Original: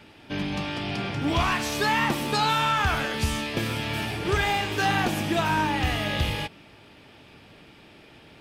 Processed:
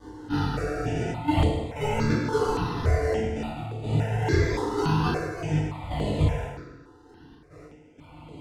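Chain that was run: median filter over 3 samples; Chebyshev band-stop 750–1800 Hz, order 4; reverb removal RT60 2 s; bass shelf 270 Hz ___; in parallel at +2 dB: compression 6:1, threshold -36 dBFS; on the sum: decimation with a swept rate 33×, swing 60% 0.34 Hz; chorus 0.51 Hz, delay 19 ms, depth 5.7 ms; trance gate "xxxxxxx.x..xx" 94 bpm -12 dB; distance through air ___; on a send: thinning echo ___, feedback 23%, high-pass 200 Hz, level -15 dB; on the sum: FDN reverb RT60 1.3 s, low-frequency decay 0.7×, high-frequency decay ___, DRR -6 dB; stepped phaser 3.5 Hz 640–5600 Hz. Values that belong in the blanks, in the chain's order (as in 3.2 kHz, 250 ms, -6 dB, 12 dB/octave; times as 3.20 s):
+4.5 dB, 72 m, 97 ms, 0.6×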